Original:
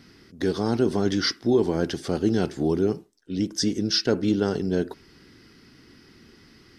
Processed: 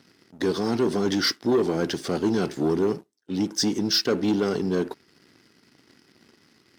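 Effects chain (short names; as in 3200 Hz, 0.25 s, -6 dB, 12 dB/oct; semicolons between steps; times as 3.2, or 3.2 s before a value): sample leveller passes 2; Bessel high-pass 150 Hz, order 2; gain -4.5 dB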